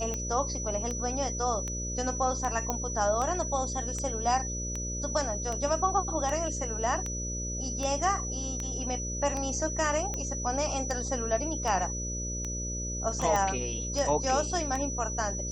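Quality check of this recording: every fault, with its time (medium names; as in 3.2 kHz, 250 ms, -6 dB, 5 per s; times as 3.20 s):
buzz 60 Hz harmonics 10 -36 dBFS
tick 78 rpm -20 dBFS
whine 5.9 kHz -35 dBFS
2.70 s: pop -15 dBFS
13.36 s: pop -16 dBFS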